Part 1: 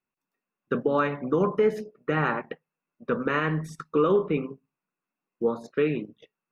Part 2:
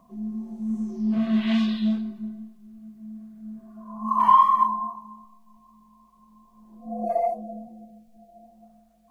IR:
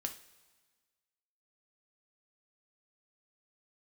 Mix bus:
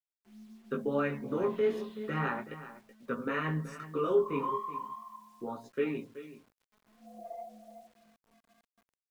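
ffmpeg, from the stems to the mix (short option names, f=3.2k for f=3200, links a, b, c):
-filter_complex "[0:a]aecho=1:1:7.4:0.6,flanger=delay=16:depth=6.1:speed=0.36,volume=-6dB,asplit=2[a][b];[b]volume=-14.5dB[c];[1:a]adelay=150,volume=-19.5dB,asplit=2[d][e];[e]volume=-9.5dB[f];[c][f]amix=inputs=2:normalize=0,aecho=0:1:377:1[g];[a][d][g]amix=inputs=3:normalize=0,lowshelf=f=130:g=-3.5,bandreject=f=60:t=h:w=6,bandreject=f=120:t=h:w=6,bandreject=f=180:t=h:w=6,acrusher=bits=10:mix=0:aa=0.000001"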